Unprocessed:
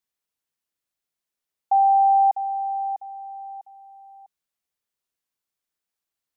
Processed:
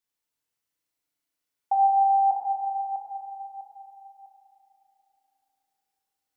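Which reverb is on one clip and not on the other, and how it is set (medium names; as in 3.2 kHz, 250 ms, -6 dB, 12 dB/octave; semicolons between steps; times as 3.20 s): FDN reverb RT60 3.2 s, high-frequency decay 0.9×, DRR -1.5 dB; trim -2 dB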